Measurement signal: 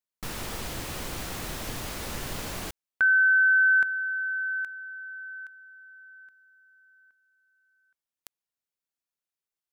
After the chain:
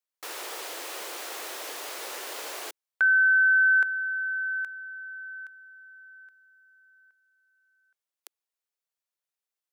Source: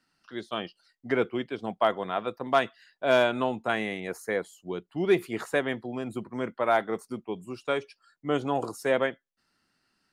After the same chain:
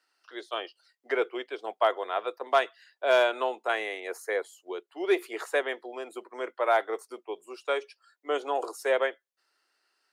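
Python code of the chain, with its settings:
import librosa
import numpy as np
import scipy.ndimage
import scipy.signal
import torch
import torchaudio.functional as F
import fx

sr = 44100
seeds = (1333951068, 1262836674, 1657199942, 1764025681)

y = scipy.signal.sosfilt(scipy.signal.butter(6, 370.0, 'highpass', fs=sr, output='sos'), x)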